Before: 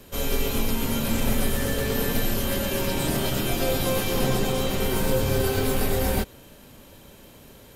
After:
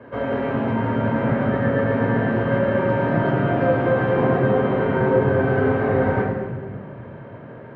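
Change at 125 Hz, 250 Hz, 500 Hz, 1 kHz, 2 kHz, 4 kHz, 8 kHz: +6.0 dB, +6.0 dB, +7.5 dB, +8.0 dB, +6.0 dB, under -10 dB, under -40 dB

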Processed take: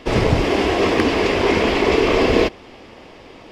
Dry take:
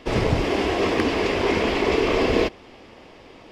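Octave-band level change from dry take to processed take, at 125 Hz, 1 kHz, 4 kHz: +4.5 dB, +4.5 dB, +4.5 dB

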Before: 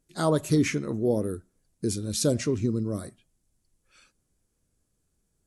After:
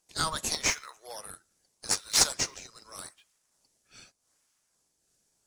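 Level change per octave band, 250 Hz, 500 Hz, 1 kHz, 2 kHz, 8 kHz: -20.0 dB, -16.0 dB, +0.5 dB, +3.0 dB, +7.0 dB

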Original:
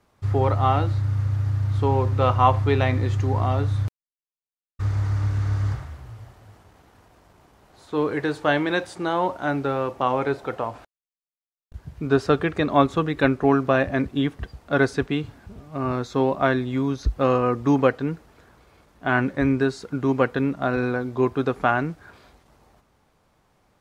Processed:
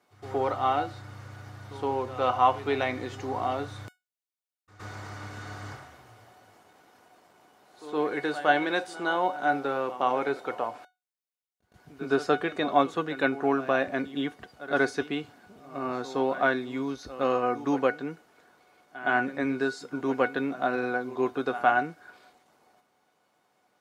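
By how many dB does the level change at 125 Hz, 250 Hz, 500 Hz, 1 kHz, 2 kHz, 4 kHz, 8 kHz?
-19.5 dB, -7.5 dB, -5.0 dB, -2.5 dB, -1.5 dB, -3.0 dB, no reading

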